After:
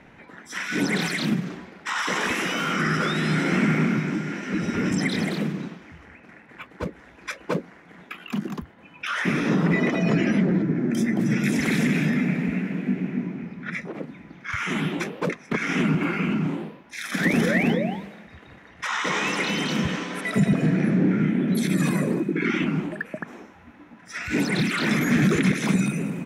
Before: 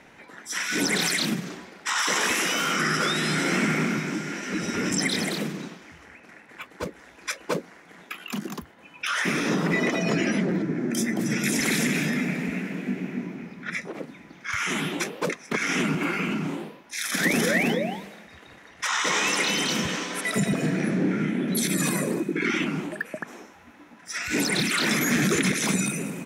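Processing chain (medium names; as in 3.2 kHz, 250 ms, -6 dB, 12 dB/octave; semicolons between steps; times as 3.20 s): tone controls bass +7 dB, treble -10 dB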